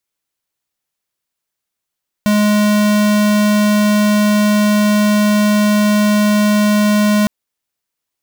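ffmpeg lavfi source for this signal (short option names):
-f lavfi -i "aevalsrc='0.251*(2*lt(mod(209*t,1),0.5)-1)':d=5.01:s=44100"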